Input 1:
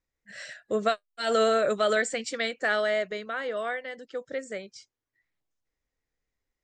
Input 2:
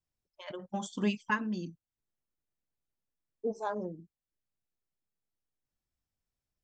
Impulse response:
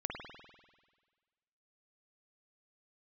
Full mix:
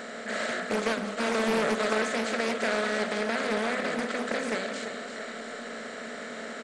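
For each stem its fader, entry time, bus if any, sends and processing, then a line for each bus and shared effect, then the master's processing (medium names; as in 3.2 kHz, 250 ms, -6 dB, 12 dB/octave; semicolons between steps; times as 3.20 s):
-13.5 dB, 0.00 s, send -6 dB, echo send -6.5 dB, spectral levelling over time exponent 0.2; hum notches 50/100/150/200/250 Hz
-0.5 dB, 0.00 s, no send, no echo send, compression 4:1, threshold -40 dBFS, peak gain reduction 13.5 dB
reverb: on, RT60 1.5 s, pre-delay 49 ms
echo: feedback delay 340 ms, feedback 58%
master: peaking EQ 240 Hz +14.5 dB 0.31 oct; loudspeaker Doppler distortion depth 0.47 ms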